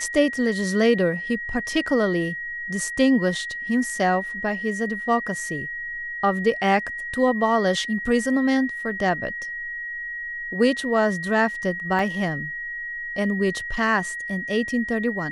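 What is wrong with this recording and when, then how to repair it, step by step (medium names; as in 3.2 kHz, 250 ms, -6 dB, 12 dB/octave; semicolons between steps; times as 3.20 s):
whine 1.9 kHz -29 dBFS
11.99 s: dropout 2.9 ms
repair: band-stop 1.9 kHz, Q 30; interpolate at 11.99 s, 2.9 ms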